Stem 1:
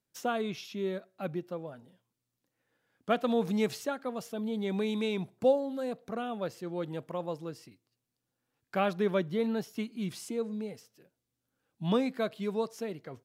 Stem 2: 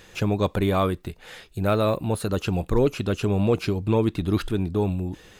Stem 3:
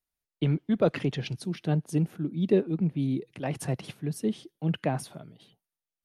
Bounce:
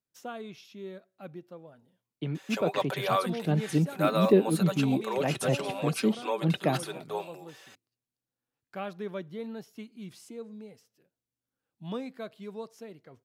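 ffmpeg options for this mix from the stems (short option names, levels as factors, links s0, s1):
-filter_complex "[0:a]volume=0.398[s0];[1:a]highpass=f=540:w=0.5412,highpass=f=540:w=1.3066,aecho=1:1:5.2:0.55,adelay=2350,volume=0.708[s1];[2:a]highpass=130,dynaudnorm=f=310:g=9:m=3.55,adelay=1800,volume=0.473[s2];[s0][s1][s2]amix=inputs=3:normalize=0"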